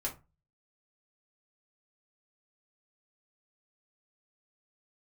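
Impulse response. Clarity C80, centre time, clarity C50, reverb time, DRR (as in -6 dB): 21.0 dB, 15 ms, 13.0 dB, 0.25 s, -4.0 dB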